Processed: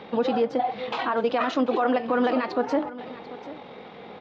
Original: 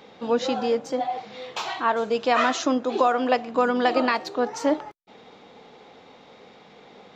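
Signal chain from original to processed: high-pass 41 Hz 12 dB/octave; treble shelf 3.7 kHz +8.5 dB; de-hum 298.4 Hz, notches 20; in parallel at +2.5 dB: compression 12:1, threshold -33 dBFS, peak gain reduction 18.5 dB; on the sum: peak limiter -13 dBFS, peak gain reduction 8 dB; tempo 1.7×; distance through air 370 m; on a send: delay 741 ms -16.5 dB; on the sum: trim +1 dB

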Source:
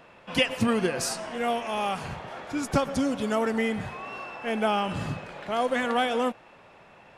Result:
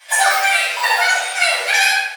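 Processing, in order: doubling 34 ms -4 dB; wide varispeed 3.31×; elliptic high-pass 490 Hz, stop band 80 dB; tilt shelf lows -4.5 dB, about 860 Hz; reverberation RT60 1.0 s, pre-delay 3 ms, DRR -13.5 dB; trim -7.5 dB

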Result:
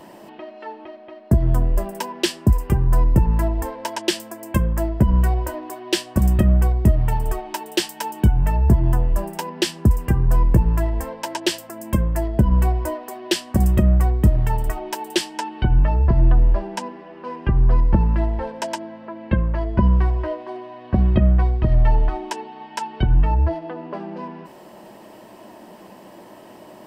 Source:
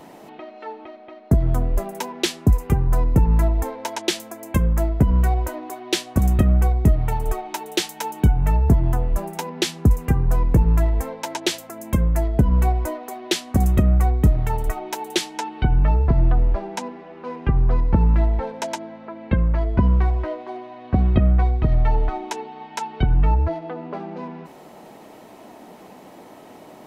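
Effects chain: rippled EQ curve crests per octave 1.3, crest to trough 6 dB

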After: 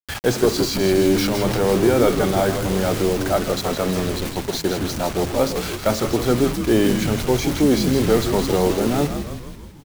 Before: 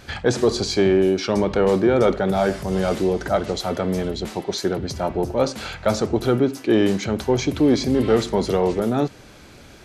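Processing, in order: bit crusher 5-bit; 0.66–1.72 s: transient shaper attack -10 dB, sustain +4 dB; frequency-shifting echo 162 ms, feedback 60%, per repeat -86 Hz, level -7 dB

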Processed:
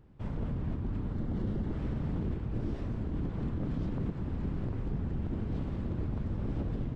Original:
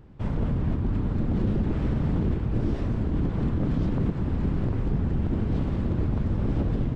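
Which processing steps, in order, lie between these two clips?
1.14–1.79 s: band-stop 2.5 kHz, Q 8.7; trim -8.5 dB

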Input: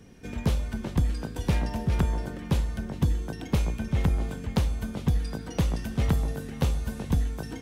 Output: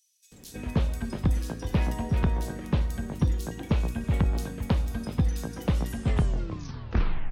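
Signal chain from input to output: tape stop on the ending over 1.70 s; bands offset in time highs, lows 330 ms, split 4.2 kHz; speed mistake 24 fps film run at 25 fps

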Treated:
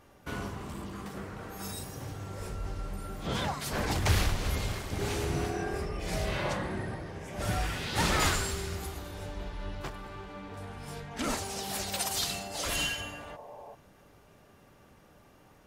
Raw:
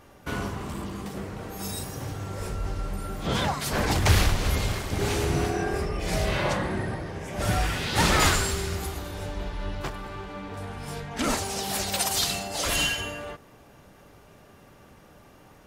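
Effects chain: 0.93–1.73 s: peaking EQ 1.4 kHz +5.5 dB 1 oct; 13.01–13.72 s: spectral replace 370–1100 Hz before; trim -6 dB

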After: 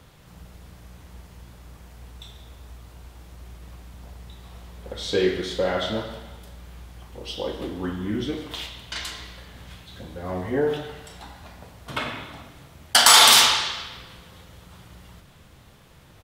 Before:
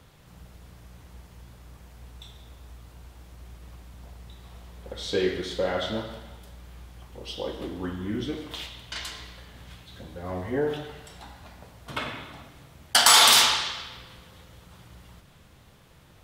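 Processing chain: doubling 38 ms -13.5 dB; trim +3 dB

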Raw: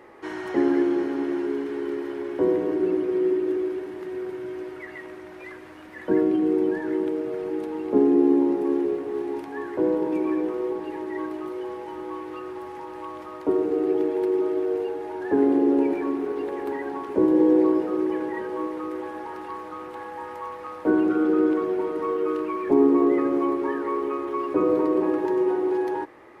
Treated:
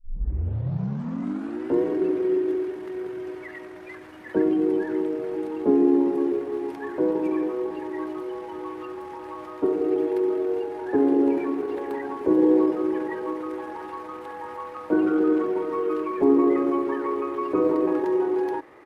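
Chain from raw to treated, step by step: tape start-up on the opening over 2.56 s; tempo 1.4×

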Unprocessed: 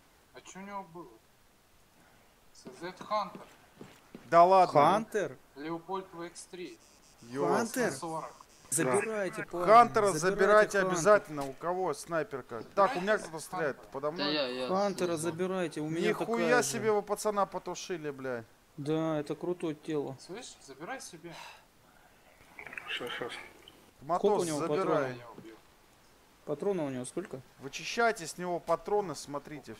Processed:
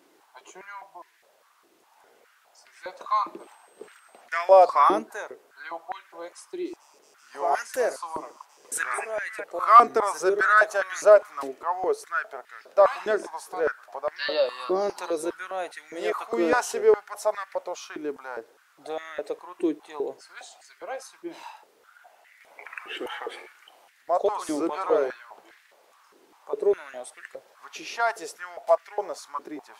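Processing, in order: 3.38–4.20 s: whistle 8.3 kHz -62 dBFS; step-sequenced high-pass 4.9 Hz 340–1800 Hz

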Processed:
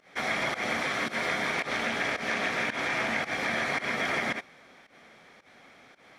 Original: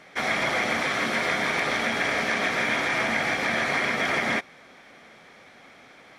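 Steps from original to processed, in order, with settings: volume shaper 111 bpm, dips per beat 1, -18 dB, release 132 ms; 1.55–3.31 s: loudspeaker Doppler distortion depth 0.11 ms; trim -4 dB

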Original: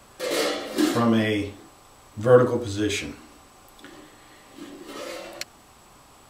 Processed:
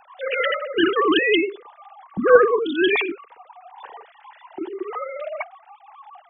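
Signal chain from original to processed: formants replaced by sine waves; spectral noise reduction 12 dB; spectrum-flattening compressor 2:1

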